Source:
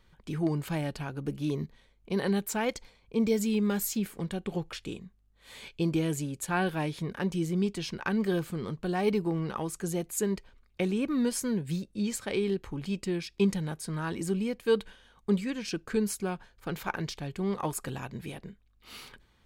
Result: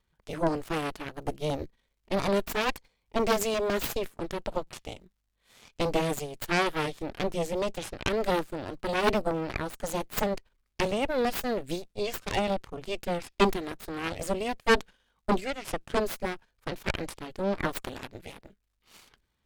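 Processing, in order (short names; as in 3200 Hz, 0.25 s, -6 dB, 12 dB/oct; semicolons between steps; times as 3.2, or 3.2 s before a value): crackle 340/s -59 dBFS; added harmonics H 3 -11 dB, 6 -11 dB, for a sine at -13.5 dBFS; gain +4 dB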